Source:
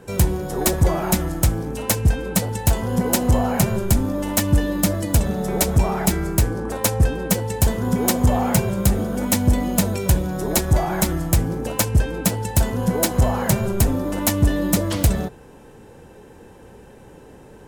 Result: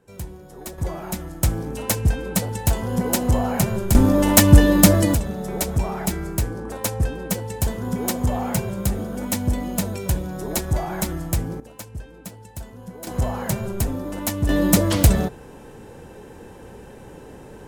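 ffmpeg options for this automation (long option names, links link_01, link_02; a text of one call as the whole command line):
ffmpeg -i in.wav -af "asetnsamples=nb_out_samples=441:pad=0,asendcmd='0.78 volume volume -9.5dB;1.43 volume volume -2dB;3.95 volume volume 7dB;5.14 volume volume -5dB;11.6 volume volume -17.5dB;13.07 volume volume -5.5dB;14.49 volume volume 3dB',volume=-16dB" out.wav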